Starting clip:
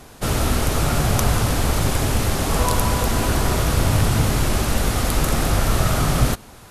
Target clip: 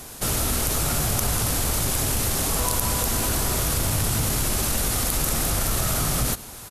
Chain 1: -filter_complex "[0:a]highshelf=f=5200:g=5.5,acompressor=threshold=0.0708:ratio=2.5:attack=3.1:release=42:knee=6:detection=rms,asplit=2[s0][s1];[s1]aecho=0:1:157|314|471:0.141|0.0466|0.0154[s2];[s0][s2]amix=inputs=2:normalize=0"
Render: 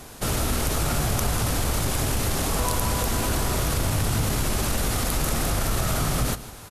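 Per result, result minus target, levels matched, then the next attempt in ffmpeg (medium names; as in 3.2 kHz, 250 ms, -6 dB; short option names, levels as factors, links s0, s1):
echo-to-direct +11 dB; 8 kHz band -2.5 dB
-filter_complex "[0:a]highshelf=f=5200:g=5.5,acompressor=threshold=0.0708:ratio=2.5:attack=3.1:release=42:knee=6:detection=rms,asplit=2[s0][s1];[s1]aecho=0:1:157|314:0.0398|0.0131[s2];[s0][s2]amix=inputs=2:normalize=0"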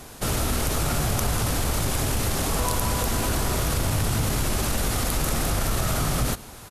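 8 kHz band -2.5 dB
-filter_complex "[0:a]highshelf=f=5200:g=14,acompressor=threshold=0.0708:ratio=2.5:attack=3.1:release=42:knee=6:detection=rms,asplit=2[s0][s1];[s1]aecho=0:1:157|314:0.0398|0.0131[s2];[s0][s2]amix=inputs=2:normalize=0"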